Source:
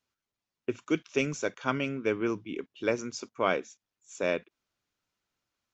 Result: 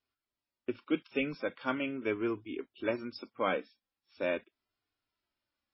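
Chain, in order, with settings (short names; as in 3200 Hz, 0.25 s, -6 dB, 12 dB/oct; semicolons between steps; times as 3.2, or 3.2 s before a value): flange 0.41 Hz, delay 2.7 ms, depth 1.3 ms, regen -27%; MP3 16 kbps 16000 Hz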